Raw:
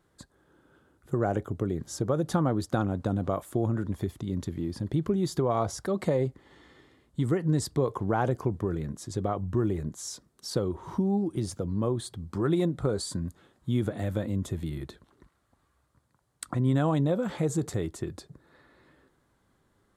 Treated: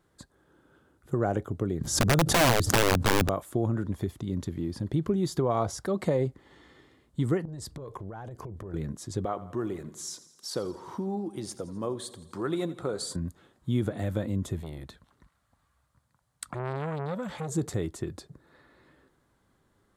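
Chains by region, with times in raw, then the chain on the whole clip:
1.81–3.29 tone controls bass +9 dB, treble +4 dB + wrapped overs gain 16 dB + backwards sustainer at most 89 dB/s
7.45–8.74 compressor 8:1, threshold -34 dBFS + low shelf 66 Hz +10.5 dB + core saturation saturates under 320 Hz
9.25–13.16 HPF 420 Hz 6 dB/oct + feedback echo 84 ms, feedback 60%, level -16.5 dB
14.62–17.52 bell 360 Hz -11 dB 0.76 oct + core saturation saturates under 1300 Hz
whole clip: dry

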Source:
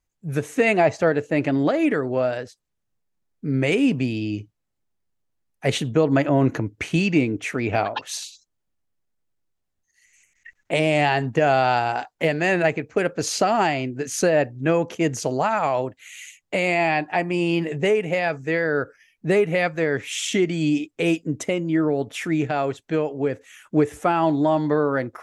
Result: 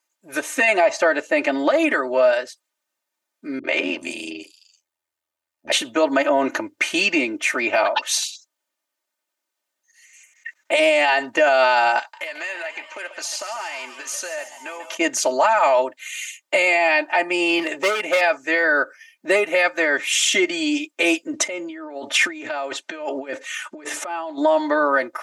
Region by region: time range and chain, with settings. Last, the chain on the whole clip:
3.59–5.72 AM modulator 82 Hz, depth 95% + three bands offset in time lows, mids, highs 50/390 ms, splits 250/5800 Hz
11.99–14.97 HPF 1200 Hz 6 dB/oct + compressor 8:1, threshold -34 dBFS + frequency-shifting echo 0.142 s, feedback 63%, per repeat +140 Hz, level -12 dB
17.59–18.21 hard clip -19 dBFS + three-band squash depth 40%
21.33–24.38 LPF 7900 Hz + negative-ratio compressor -31 dBFS
whole clip: HPF 640 Hz 12 dB/oct; comb 3.3 ms, depth 86%; maximiser +14 dB; gain -7 dB

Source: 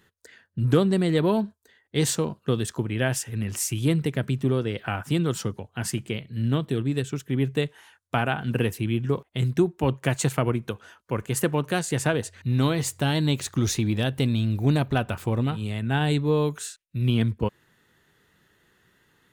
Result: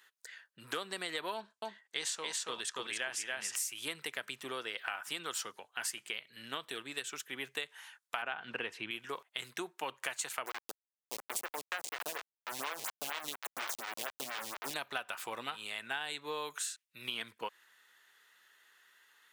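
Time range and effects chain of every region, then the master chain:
1.34–3.55 LPF 8200 Hz + echo 0.281 s -3.5 dB
8.22–8.91 LPF 3800 Hz + low shelf 490 Hz +7.5 dB
10.46–14.74 level-crossing sampler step -21 dBFS + photocell phaser 4.2 Hz
whole clip: HPF 1100 Hz 12 dB/oct; compressor, threshold -35 dBFS; gain +1 dB

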